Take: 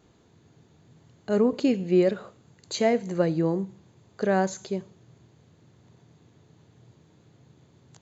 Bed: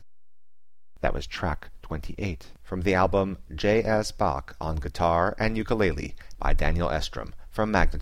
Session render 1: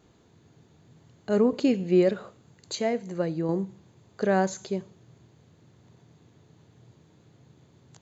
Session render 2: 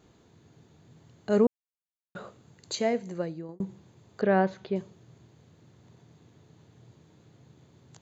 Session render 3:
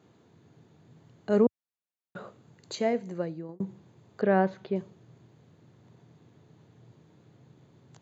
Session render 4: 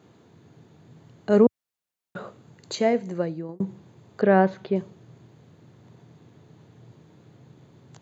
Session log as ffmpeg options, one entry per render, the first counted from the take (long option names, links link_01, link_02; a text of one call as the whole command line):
ffmpeg -i in.wav -filter_complex "[0:a]asplit=3[link_01][link_02][link_03];[link_01]atrim=end=2.752[link_04];[link_02]atrim=start=2.748:end=3.492,asetpts=PTS-STARTPTS,volume=-4.5dB[link_05];[link_03]atrim=start=3.488[link_06];[link_04][link_05]acrossfade=duration=0.004:curve1=hsin:curve2=hsin[link_07];[link_07][link_06]acrossfade=duration=0.004:curve1=hsin:curve2=hsin" out.wav
ffmpeg -i in.wav -filter_complex "[0:a]asettb=1/sr,asplit=3[link_01][link_02][link_03];[link_01]atrim=end=4.214[link_04];[link_02]atrim=start=4.21:end=4.76,asetpts=PTS-STARTPTS,afade=type=in:duration=0.004:curve=qsin,afade=type=out:start_time=0.546:duration=0.004:curve=qsin,lowpass=frequency=3400:width=0.5412,lowpass=frequency=3400:width=1.3066[link_05];[link_03]atrim=start=4.756[link_06];[link_04][link_05]acrossfade=duration=0.004:curve1=hsin:curve2=qsin[link_07];[link_07][link_06]acrossfade=duration=0.004:curve1=qsin:curve2=hsin,asplit=4[link_08][link_09][link_10][link_11];[link_08]atrim=end=1.47,asetpts=PTS-STARTPTS,afade=type=out:start_time=1.466:duration=0.004:curve=hsin[link_12];[link_09]atrim=start=1.47:end=2.15,asetpts=PTS-STARTPTS,volume=0[link_13];[link_10]atrim=start=2.15:end=3.6,asetpts=PTS-STARTPTS,afade=type=in:duration=0.004:curve=hsin,afade=type=out:start_time=0.83:duration=0.62[link_14];[link_11]atrim=start=3.6,asetpts=PTS-STARTPTS,afade=type=in:duration=0.004:curve=hsin[link_15];[link_12][link_13][link_14][link_15]concat=n=4:v=0:a=1" out.wav
ffmpeg -i in.wav -af "highpass=frequency=92:width=0.5412,highpass=frequency=92:width=1.3066,highshelf=frequency=3900:gain=-8" out.wav
ffmpeg -i in.wav -af "volume=5.5dB" out.wav